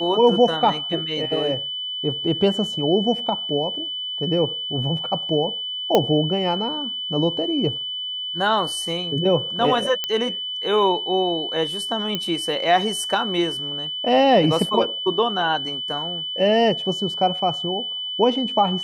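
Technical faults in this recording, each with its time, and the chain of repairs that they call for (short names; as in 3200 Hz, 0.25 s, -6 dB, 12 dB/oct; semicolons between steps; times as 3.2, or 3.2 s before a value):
tone 3000 Hz -26 dBFS
5.95 pop -4 dBFS
10.04 pop -9 dBFS
12.15 pop -10 dBFS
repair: de-click; notch 3000 Hz, Q 30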